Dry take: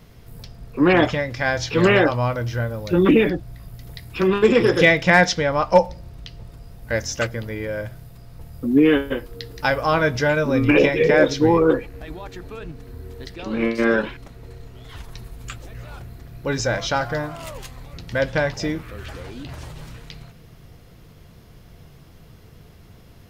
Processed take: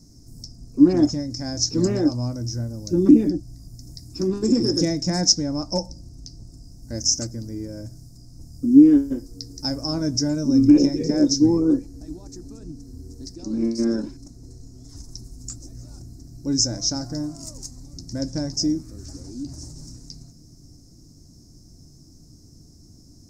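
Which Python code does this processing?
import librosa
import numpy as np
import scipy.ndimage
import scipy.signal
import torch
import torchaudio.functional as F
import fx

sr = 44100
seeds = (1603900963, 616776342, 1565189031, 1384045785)

y = fx.curve_eq(x, sr, hz=(200.0, 290.0, 460.0, 650.0, 1100.0, 1800.0, 3200.0, 5300.0, 7900.0, 12000.0), db=(0, 10, -12, -9, -17, -21, -27, 14, 10, -5))
y = y * 10.0 ** (-3.0 / 20.0)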